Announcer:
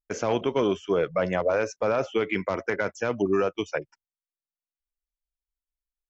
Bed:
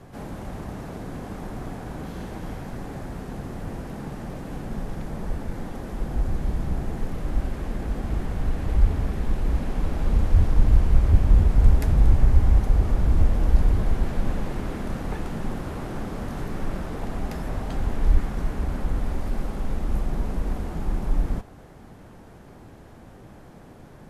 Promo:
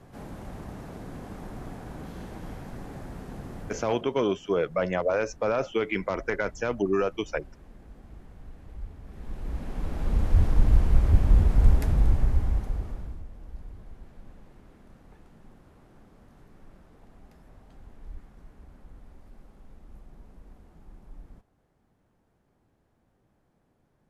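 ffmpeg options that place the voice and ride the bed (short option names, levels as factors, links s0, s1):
-filter_complex "[0:a]adelay=3600,volume=0.841[s0];[1:a]volume=4.22,afade=t=out:st=3.59:d=0.45:silence=0.177828,afade=t=in:st=9.03:d=1.38:silence=0.125893,afade=t=out:st=11.71:d=1.51:silence=0.0891251[s1];[s0][s1]amix=inputs=2:normalize=0"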